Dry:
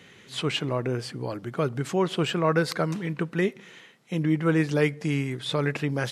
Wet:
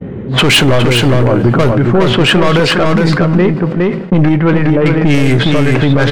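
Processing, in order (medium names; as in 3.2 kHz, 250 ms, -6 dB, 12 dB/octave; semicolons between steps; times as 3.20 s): random-step tremolo, depth 85%; level-controlled noise filter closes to 340 Hz, open at -24 dBFS; in parallel at +2 dB: compression, threshold -41 dBFS, peak gain reduction 17 dB; on the sum: bass shelf 270 Hz -3.5 dB; saturation -30.5 dBFS, distortion -8 dB; bass shelf 97 Hz +9.5 dB; two-slope reverb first 0.2 s, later 2.8 s, from -20 dB, DRR 14 dB; gate -54 dBFS, range -31 dB; on a send: delay 412 ms -4.5 dB; on the sum: loudness maximiser +29.5 dB; decay stretcher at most 75 dB/s; trim -1.5 dB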